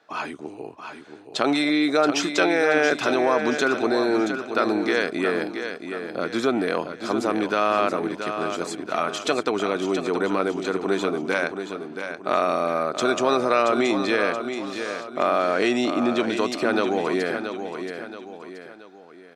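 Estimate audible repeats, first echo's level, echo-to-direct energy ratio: 3, -8.0 dB, -7.0 dB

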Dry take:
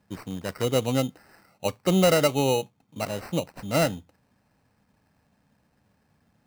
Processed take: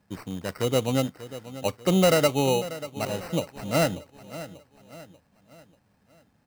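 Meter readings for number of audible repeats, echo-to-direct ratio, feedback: 3, -14.0 dB, 44%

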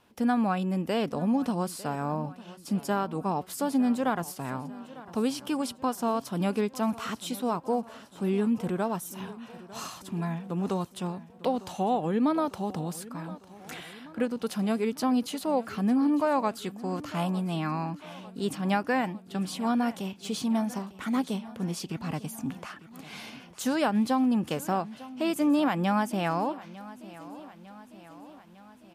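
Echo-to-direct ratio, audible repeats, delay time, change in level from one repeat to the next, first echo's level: -16.0 dB, 4, 901 ms, -4.5 dB, -18.0 dB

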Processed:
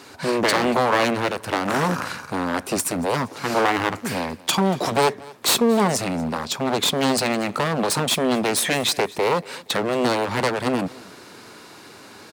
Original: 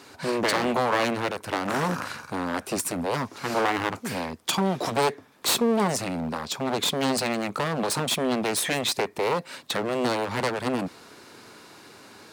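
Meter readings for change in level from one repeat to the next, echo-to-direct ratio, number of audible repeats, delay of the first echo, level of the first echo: -9.5 dB, -21.5 dB, 2, 234 ms, -22.0 dB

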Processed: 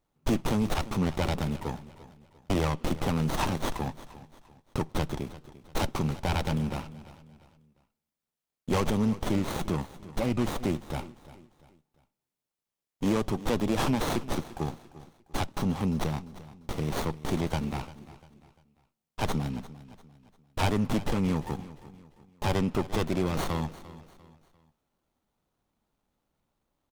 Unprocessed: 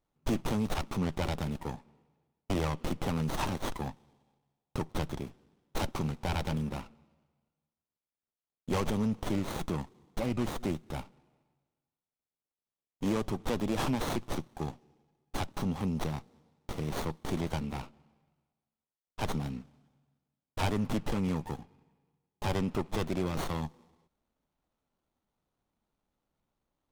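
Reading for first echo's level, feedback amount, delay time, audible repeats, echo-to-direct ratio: -17.0 dB, 37%, 347 ms, 3, -16.5 dB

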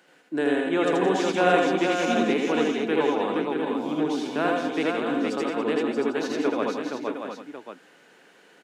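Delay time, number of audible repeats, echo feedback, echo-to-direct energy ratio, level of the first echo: 79 ms, 11, no regular repeats, 3.0 dB, -1.5 dB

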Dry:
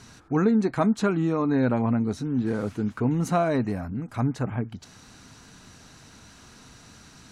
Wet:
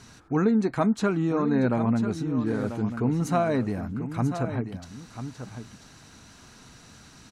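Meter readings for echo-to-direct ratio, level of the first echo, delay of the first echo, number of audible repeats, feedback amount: -10.0 dB, -10.0 dB, 991 ms, 1, no regular repeats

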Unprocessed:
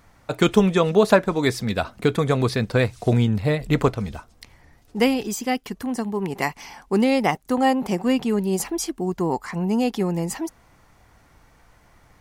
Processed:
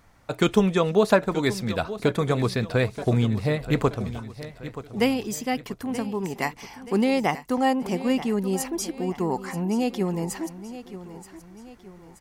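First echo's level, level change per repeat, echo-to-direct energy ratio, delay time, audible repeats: -14.0 dB, -7.0 dB, -13.0 dB, 928 ms, 3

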